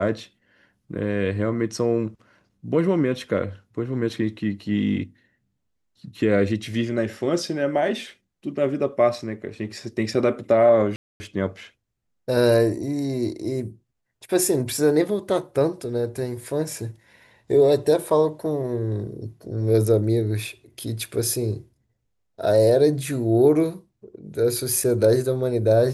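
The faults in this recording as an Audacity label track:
10.960000	11.200000	dropout 240 ms

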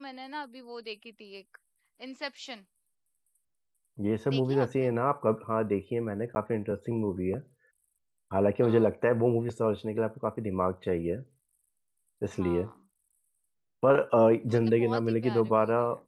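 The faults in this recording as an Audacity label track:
6.350000	6.360000	dropout 10 ms

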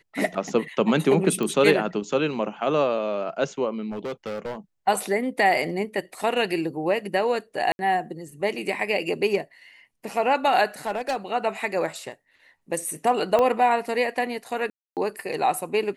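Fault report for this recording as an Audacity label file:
1.430000	1.430000	pop -15 dBFS
3.910000	4.570000	clipped -27 dBFS
7.720000	7.790000	dropout 71 ms
10.860000	11.160000	clipped -20.5 dBFS
13.390000	13.390000	pop -11 dBFS
14.700000	14.970000	dropout 268 ms

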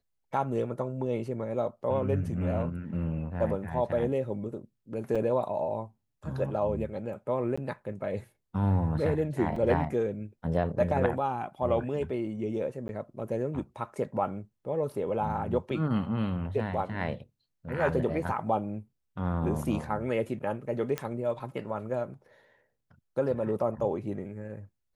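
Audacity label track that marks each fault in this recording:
5.150000	5.160000	dropout 5.6 ms
7.560000	7.580000	dropout 15 ms
9.560000	9.560000	dropout 3.4 ms
12.880000	12.890000	dropout 11 ms
20.980000	20.980000	pop -16 dBFS

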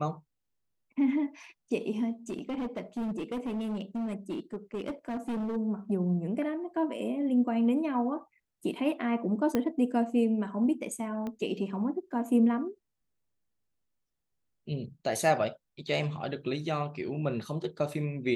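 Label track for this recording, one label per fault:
2.290000	5.570000	clipped -30 dBFS
9.550000	9.550000	pop -15 dBFS
11.270000	11.270000	pop -25 dBFS

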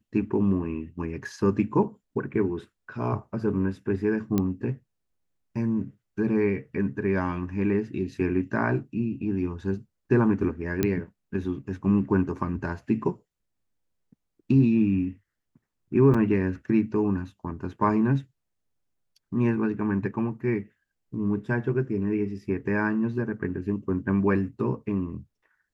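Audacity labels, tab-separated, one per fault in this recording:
4.380000	4.380000	pop -12 dBFS
10.830000	10.830000	pop -10 dBFS
16.140000	16.140000	dropout 4.8 ms

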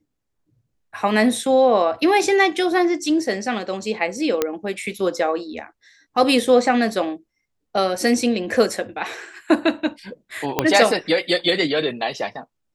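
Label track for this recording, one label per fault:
4.420000	4.420000	pop -5 dBFS
10.590000	10.590000	pop -3 dBFS

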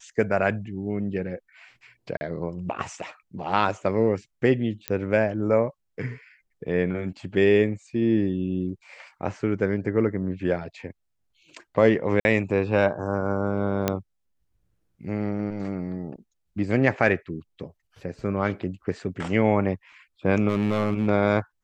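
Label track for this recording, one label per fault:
2.170000	2.210000	dropout 40 ms
4.880000	4.880000	pop -11 dBFS
8.690000	8.690000	dropout 3.5 ms
12.200000	12.250000	dropout 51 ms
13.880000	13.880000	pop -7 dBFS
20.480000	21.080000	clipped -17.5 dBFS

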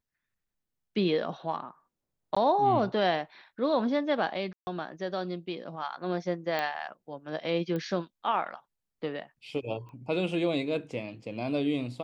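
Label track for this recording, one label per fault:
2.350000	2.370000	dropout 15 ms
4.530000	4.670000	dropout 140 ms
6.590000	6.590000	pop -18 dBFS
7.760000	7.760000	pop -23 dBFS
9.890000	9.890000	pop -38 dBFS

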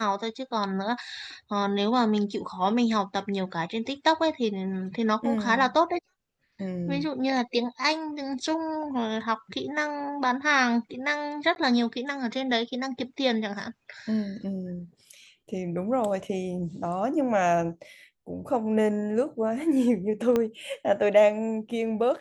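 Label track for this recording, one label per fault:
11.550000	11.560000	dropout 11 ms
20.360000	20.360000	pop -13 dBFS

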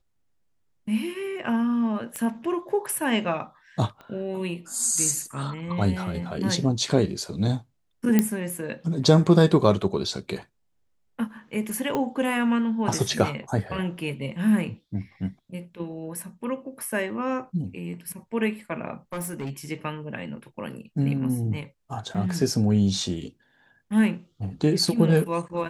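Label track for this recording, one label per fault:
2.160000	2.160000	pop -17 dBFS
4.010000	4.010000	pop -30 dBFS
8.190000	8.190000	pop -6 dBFS
11.950000	11.950000	pop -13 dBFS
19.120000	19.500000	clipped -27 dBFS
22.140000	22.150000	dropout 5.8 ms

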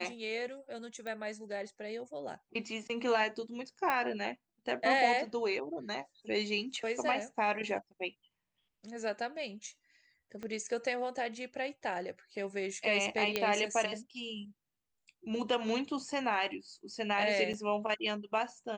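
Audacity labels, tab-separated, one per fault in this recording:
1.070000	1.070000	pop -28 dBFS
3.900000	3.900000	pop -18 dBFS
10.430000	10.430000	pop -29 dBFS
13.360000	13.360000	pop -15 dBFS
17.530000	17.540000	dropout 6.8 ms

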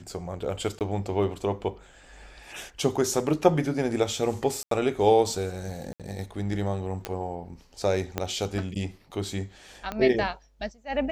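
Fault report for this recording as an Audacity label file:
0.790000	0.810000	dropout 18 ms
4.630000	4.710000	dropout 83 ms
5.930000	6.000000	dropout 67 ms
7.050000	7.050000	pop -14 dBFS
8.180000	8.180000	pop -12 dBFS
9.920000	9.920000	pop -17 dBFS

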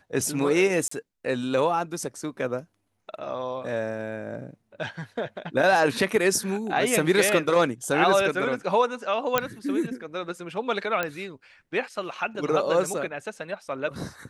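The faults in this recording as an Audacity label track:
0.880000	0.910000	dropout 34 ms
9.380000	9.380000	pop -6 dBFS
11.030000	11.030000	pop -12 dBFS

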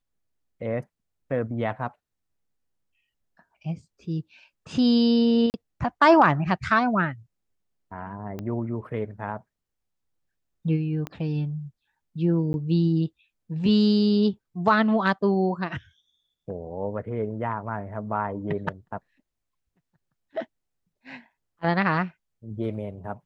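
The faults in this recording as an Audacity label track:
5.500000	5.540000	dropout 39 ms
8.390000	8.390000	pop -21 dBFS
11.070000	11.070000	pop -19 dBFS
12.530000	12.540000	dropout 11 ms

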